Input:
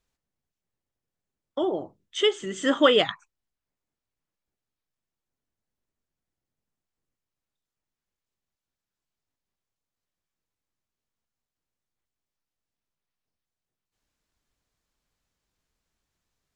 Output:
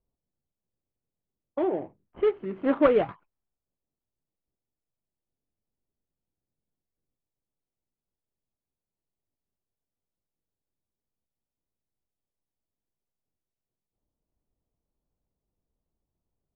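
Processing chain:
running median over 25 samples
low-pass that shuts in the quiet parts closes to 810 Hz, open at −28.5 dBFS
low-pass filter 2,400 Hz 24 dB per octave

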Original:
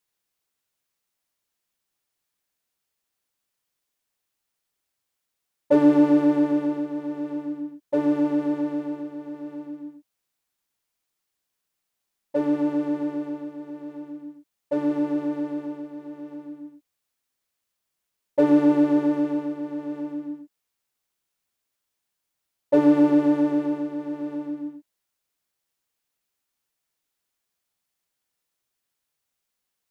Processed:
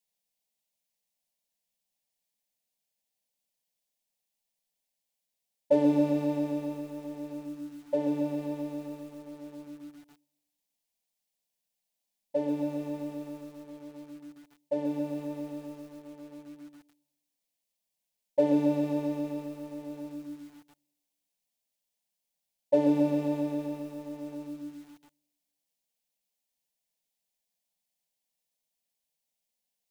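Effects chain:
phaser with its sweep stopped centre 350 Hz, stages 6
convolution reverb RT60 1.0 s, pre-delay 48 ms, DRR 15 dB
feedback echo at a low word length 137 ms, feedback 55%, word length 8 bits, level −8.5 dB
level −3 dB

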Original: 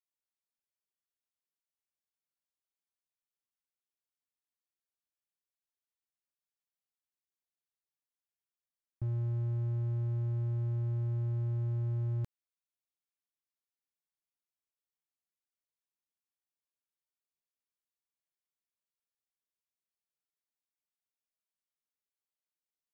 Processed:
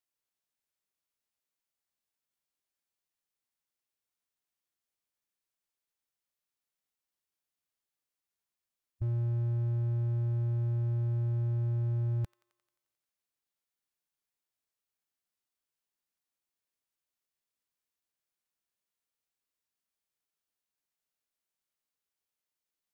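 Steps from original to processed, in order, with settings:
delay with a high-pass on its return 88 ms, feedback 66%, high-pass 1,500 Hz, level −16 dB
formants moved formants −5 semitones
level +3.5 dB

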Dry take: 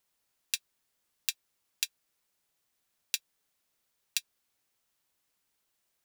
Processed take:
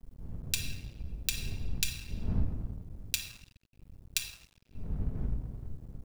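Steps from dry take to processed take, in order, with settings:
wind on the microphone 84 Hz −40 dBFS
rectangular room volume 1,200 cubic metres, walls mixed, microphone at 1.5 metres
dead-zone distortion −48 dBFS

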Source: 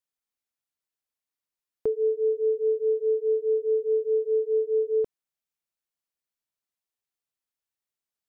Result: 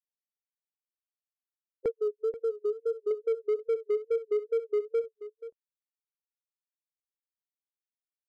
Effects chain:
spectral dynamics exaggerated over time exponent 3
reverb reduction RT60 1.8 s
transient designer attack +12 dB, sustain −10 dB
brickwall limiter −19 dBFS, peak gain reduction 10 dB
hard clipping −20.5 dBFS, distortion −24 dB
0:01.95–0:03.11: phaser with its sweep stopped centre 610 Hz, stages 6
tape wow and flutter 83 cents
on a send: single-tap delay 482 ms −14 dB
on the sum: level −2 dB

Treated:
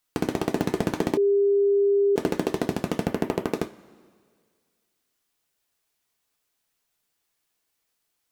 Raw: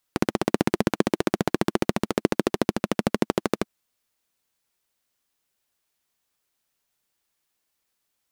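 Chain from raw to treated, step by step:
0:03.05–0:03.47: flat-topped bell 5,800 Hz −9 dB
convolution reverb, pre-delay 3 ms, DRR 7 dB
hard clipping −13 dBFS, distortion −10 dB
0:01.17–0:02.16: beep over 401 Hz −17 dBFS

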